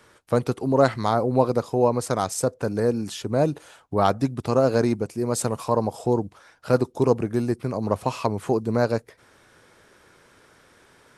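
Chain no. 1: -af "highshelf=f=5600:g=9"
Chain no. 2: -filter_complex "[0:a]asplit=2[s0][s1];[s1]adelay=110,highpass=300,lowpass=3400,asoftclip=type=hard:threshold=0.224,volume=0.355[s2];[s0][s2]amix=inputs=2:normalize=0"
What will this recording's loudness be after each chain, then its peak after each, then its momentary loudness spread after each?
-23.5 LUFS, -23.5 LUFS; -3.0 dBFS, -3.0 dBFS; 6 LU, 6 LU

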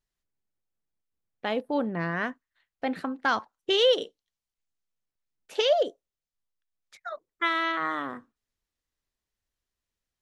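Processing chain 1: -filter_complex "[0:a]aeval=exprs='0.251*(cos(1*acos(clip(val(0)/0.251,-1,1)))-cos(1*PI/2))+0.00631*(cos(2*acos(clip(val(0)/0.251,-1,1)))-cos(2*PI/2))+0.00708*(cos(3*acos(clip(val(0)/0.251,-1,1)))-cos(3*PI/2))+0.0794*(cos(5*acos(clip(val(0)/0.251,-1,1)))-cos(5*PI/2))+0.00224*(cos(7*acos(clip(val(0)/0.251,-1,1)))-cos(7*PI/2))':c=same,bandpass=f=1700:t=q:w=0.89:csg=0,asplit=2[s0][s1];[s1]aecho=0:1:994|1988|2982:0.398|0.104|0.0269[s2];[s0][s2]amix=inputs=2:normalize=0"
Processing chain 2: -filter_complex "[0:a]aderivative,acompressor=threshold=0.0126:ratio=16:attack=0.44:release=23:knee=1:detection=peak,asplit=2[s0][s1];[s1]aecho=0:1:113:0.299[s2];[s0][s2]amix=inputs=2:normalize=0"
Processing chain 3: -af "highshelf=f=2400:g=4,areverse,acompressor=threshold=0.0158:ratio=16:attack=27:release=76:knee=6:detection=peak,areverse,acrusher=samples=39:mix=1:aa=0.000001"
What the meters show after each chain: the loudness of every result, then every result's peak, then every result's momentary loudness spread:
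-29.0 LUFS, -46.5 LUFS, -39.0 LUFS; -13.0 dBFS, -32.0 dBFS, -22.0 dBFS; 18 LU, 13 LU, 8 LU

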